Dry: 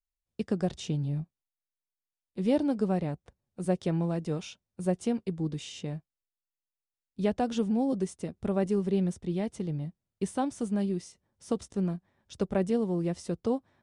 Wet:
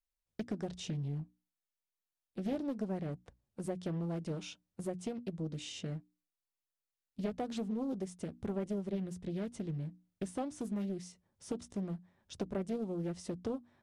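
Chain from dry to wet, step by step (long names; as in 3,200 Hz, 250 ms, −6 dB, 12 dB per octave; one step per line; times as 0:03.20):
downward compressor 2.5 to 1, threshold −35 dBFS, peak gain reduction 10 dB
mains-hum notches 60/120/180/240/300 Hz
highs frequency-modulated by the lows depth 0.44 ms
level −1.5 dB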